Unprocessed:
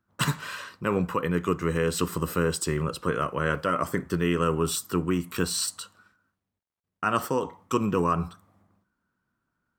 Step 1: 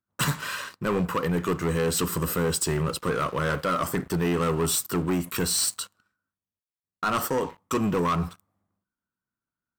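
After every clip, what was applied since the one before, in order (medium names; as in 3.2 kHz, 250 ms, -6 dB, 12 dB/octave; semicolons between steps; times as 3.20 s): treble shelf 8.4 kHz +6.5 dB; waveshaping leveller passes 3; trim -7.5 dB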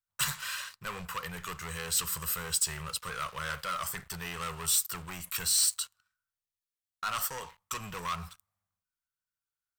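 amplifier tone stack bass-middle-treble 10-0-10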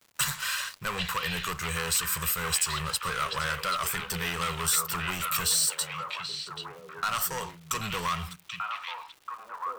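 compression 2.5:1, threshold -33 dBFS, peak gain reduction 7 dB; crackle 300 per s -51 dBFS; on a send: repeats whose band climbs or falls 785 ms, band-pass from 2.8 kHz, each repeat -1.4 oct, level 0 dB; on the sum: trim +7 dB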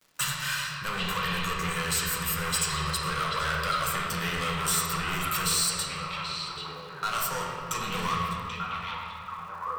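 reverberation RT60 2.7 s, pre-delay 6 ms, DRR -2 dB; trim -2.5 dB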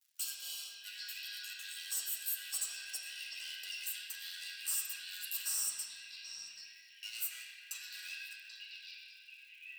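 four frequency bands reordered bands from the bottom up 4123; flange 0.23 Hz, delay 1.2 ms, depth 9.2 ms, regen -68%; pre-emphasis filter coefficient 0.97; trim -4.5 dB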